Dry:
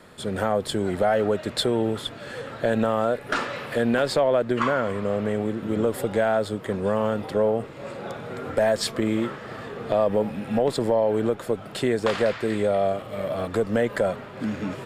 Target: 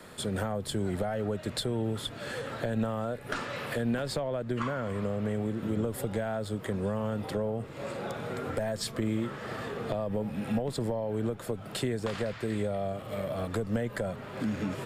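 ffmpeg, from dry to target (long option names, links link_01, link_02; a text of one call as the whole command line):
ffmpeg -i in.wav -filter_complex "[0:a]highshelf=frequency=6500:gain=6.5,acrossover=split=180[link_01][link_02];[link_02]acompressor=threshold=-33dB:ratio=4[link_03];[link_01][link_03]amix=inputs=2:normalize=0" out.wav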